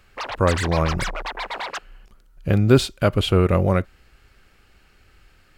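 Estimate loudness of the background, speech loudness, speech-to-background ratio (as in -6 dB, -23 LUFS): -29.5 LUFS, -20.5 LUFS, 9.0 dB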